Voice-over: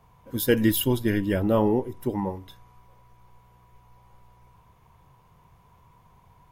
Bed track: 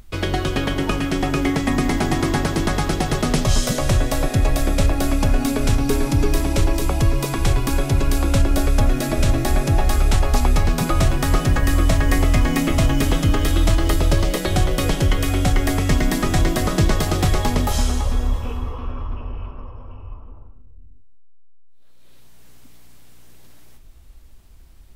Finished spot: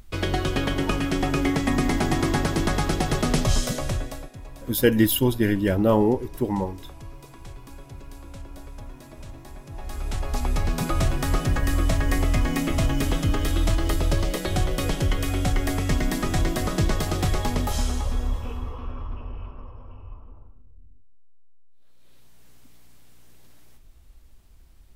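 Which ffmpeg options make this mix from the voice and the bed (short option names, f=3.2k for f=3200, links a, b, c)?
-filter_complex "[0:a]adelay=4350,volume=2.5dB[a];[1:a]volume=15dB,afade=t=out:st=3.42:d=0.89:silence=0.0944061,afade=t=in:st=9.69:d=1.13:silence=0.125893[b];[a][b]amix=inputs=2:normalize=0"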